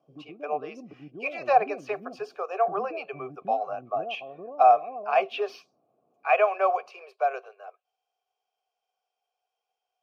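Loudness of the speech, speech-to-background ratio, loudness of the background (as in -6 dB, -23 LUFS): -27.0 LUFS, 15.0 dB, -42.0 LUFS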